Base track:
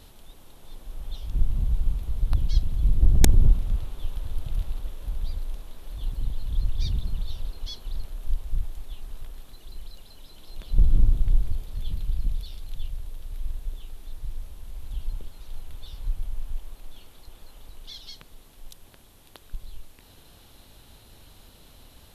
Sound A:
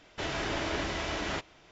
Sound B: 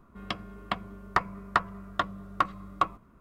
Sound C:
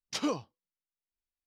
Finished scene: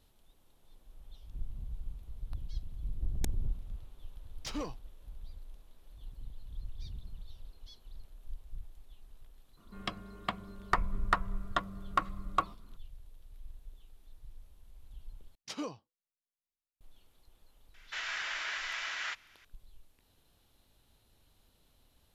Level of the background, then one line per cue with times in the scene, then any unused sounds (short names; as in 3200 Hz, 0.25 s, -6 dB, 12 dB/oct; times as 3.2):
base track -17 dB
4.32 add C -12.5 dB + sample leveller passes 2
9.57 add B -4 dB + bell 8600 Hz +5 dB
15.35 replace with C -8 dB
17.74 add A -3.5 dB + resonant high-pass 1600 Hz, resonance Q 1.7